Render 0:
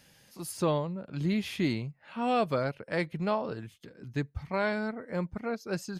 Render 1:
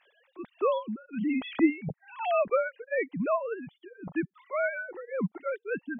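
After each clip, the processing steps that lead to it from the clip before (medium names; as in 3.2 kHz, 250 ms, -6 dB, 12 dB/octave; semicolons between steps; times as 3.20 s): formants replaced by sine waves; reverb removal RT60 1.2 s; trim +2 dB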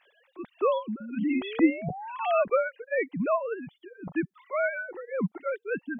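painted sound rise, 1.00–2.44 s, 210–1500 Hz -40 dBFS; trim +1.5 dB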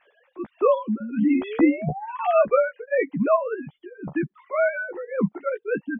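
distance through air 480 m; doubling 14 ms -7 dB; trim +6 dB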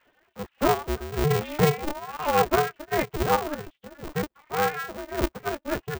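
polarity switched at an audio rate 150 Hz; trim -3 dB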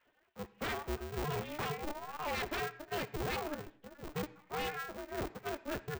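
wavefolder -23 dBFS; on a send at -16 dB: reverberation RT60 0.60 s, pre-delay 47 ms; on the sum: trim -8.5 dB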